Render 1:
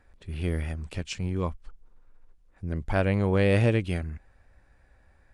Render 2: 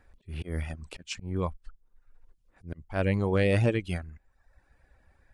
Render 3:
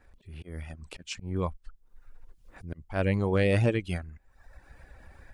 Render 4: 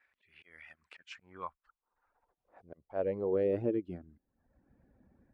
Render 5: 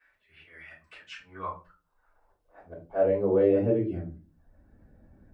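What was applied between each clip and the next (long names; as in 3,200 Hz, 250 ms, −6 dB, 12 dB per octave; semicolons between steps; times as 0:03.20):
volume swells 161 ms; reverb reduction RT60 0.81 s
fade in at the beginning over 1.28 s; upward compression, threshold −37 dBFS
band-pass filter sweep 2,100 Hz → 230 Hz, 0:00.60–0:04.43
rectangular room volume 150 cubic metres, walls furnished, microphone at 5.2 metres; level −4 dB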